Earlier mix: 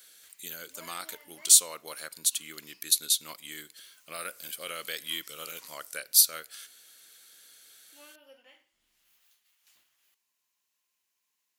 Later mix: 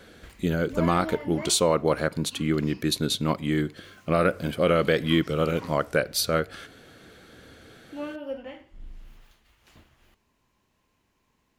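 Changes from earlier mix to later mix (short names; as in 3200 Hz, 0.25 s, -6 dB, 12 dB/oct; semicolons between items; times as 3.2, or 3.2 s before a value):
speech: add high shelf 4300 Hz -10 dB; master: remove differentiator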